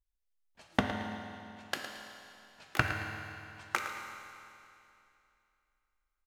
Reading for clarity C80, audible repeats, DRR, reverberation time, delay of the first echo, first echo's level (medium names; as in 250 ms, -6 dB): 3.5 dB, 1, 1.5 dB, 2.7 s, 111 ms, -11.0 dB